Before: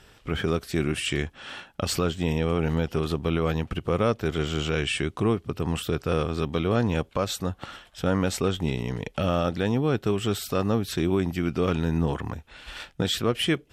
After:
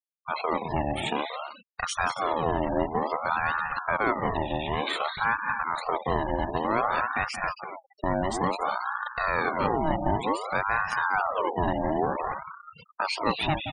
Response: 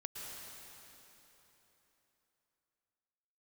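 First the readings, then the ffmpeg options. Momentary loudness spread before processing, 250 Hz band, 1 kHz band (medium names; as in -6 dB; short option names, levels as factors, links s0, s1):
7 LU, -6.5 dB, +8.5 dB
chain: -af "aecho=1:1:177.8|212.8|271.1:0.355|0.316|0.355,afftfilt=real='re*gte(hypot(re,im),0.0447)':imag='im*gte(hypot(re,im),0.0447)':win_size=1024:overlap=0.75,aeval=exprs='val(0)*sin(2*PI*880*n/s+880*0.5/0.55*sin(2*PI*0.55*n/s))':c=same"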